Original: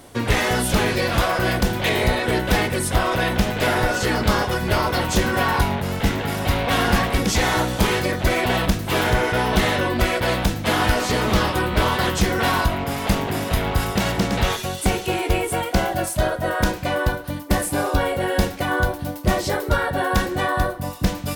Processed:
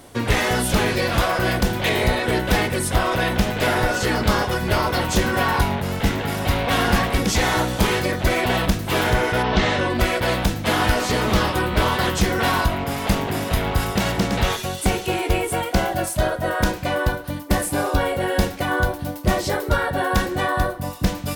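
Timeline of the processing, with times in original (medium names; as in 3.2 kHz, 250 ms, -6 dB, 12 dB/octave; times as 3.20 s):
9.42–9.93 s: low-pass 4.3 kHz -> 11 kHz 24 dB/octave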